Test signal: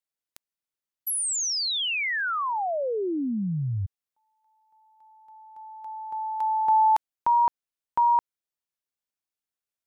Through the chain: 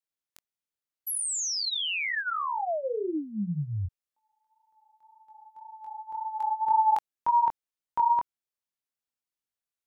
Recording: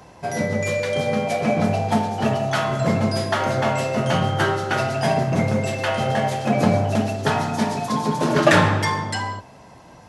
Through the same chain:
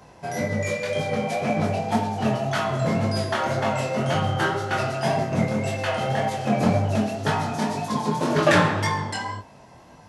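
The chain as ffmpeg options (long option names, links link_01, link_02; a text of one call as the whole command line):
ffmpeg -i in.wav -af "flanger=delay=19:depth=5.6:speed=1.9" out.wav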